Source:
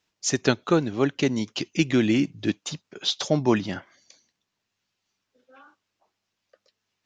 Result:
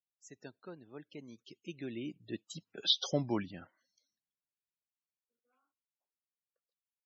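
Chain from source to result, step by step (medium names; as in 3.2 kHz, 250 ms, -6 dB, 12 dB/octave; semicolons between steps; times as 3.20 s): Doppler pass-by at 2.89 s, 21 m/s, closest 2.7 m; loudest bins only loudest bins 64; trim -2.5 dB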